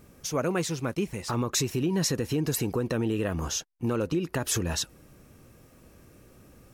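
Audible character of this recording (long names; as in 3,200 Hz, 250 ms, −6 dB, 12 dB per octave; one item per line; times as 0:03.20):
background noise floor −56 dBFS
spectral slope −4.5 dB per octave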